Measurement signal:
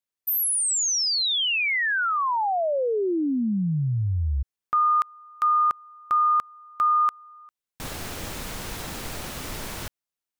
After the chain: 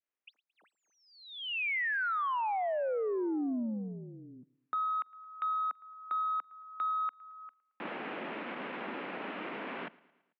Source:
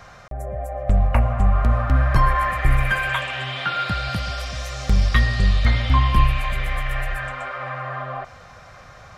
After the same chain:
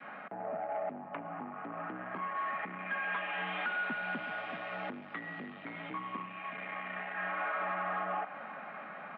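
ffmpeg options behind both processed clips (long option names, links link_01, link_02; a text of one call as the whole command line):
ffmpeg -i in.wav -af "adynamicequalizer=threshold=0.0178:dfrequency=850:dqfactor=1.1:tfrequency=850:tqfactor=1.1:attack=5:release=100:ratio=0.375:range=1.5:mode=boostabove:tftype=bell,acompressor=threshold=-27dB:ratio=8:attack=18:release=562:knee=1:detection=rms,asoftclip=type=tanh:threshold=-29dB,aecho=1:1:111|222|333|444:0.0708|0.0389|0.0214|0.0118,highpass=frequency=160:width_type=q:width=0.5412,highpass=frequency=160:width_type=q:width=1.307,lowpass=frequency=2700:width_type=q:width=0.5176,lowpass=frequency=2700:width_type=q:width=0.7071,lowpass=frequency=2700:width_type=q:width=1.932,afreqshift=53" out.wav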